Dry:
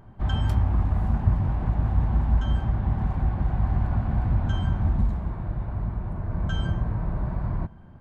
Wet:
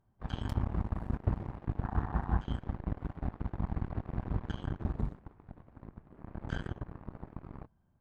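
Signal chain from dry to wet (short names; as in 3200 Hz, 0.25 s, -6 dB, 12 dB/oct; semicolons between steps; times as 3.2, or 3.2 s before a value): 6.09–6.68 flutter echo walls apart 4.6 m, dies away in 0.39 s; added harmonics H 5 -38 dB, 7 -15 dB, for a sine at -8 dBFS; 1.83–2.39 spectral gain 680–1900 Hz +8 dB; gain -9 dB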